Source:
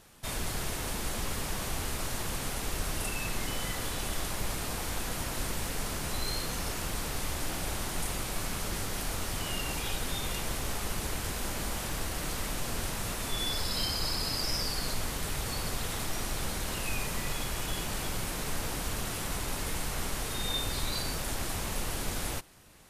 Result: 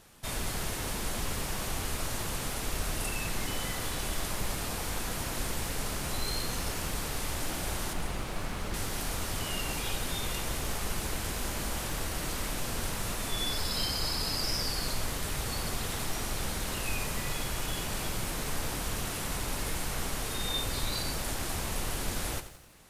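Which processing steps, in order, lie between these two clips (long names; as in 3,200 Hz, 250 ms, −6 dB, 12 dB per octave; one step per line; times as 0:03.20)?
0:07.93–0:08.74: high-shelf EQ 4,700 Hz −11.5 dB
feedback echo at a low word length 88 ms, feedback 55%, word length 9 bits, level −12 dB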